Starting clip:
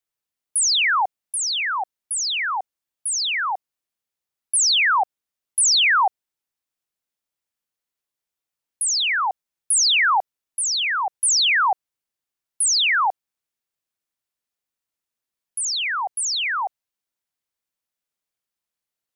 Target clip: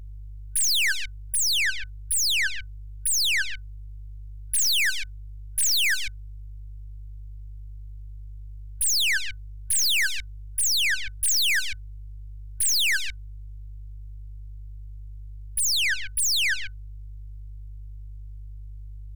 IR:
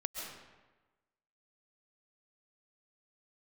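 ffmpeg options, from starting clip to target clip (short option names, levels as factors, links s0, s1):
-af "aeval=exprs='val(0)+0.00891*(sin(2*PI*50*n/s)+sin(2*PI*2*50*n/s)/2+sin(2*PI*3*50*n/s)/3+sin(2*PI*4*50*n/s)/4+sin(2*PI*5*50*n/s)/5)':c=same,aeval=exprs='(tanh(28.2*val(0)+0.6)-tanh(0.6))/28.2':c=same,afftfilt=real='re*(1-between(b*sr/4096,100,1500))':imag='im*(1-between(b*sr/4096,100,1500))':win_size=4096:overlap=0.75,volume=2.37"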